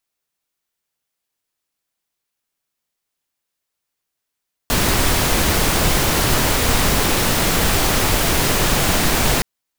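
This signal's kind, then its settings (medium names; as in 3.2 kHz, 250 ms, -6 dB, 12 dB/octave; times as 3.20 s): noise pink, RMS -16.5 dBFS 4.72 s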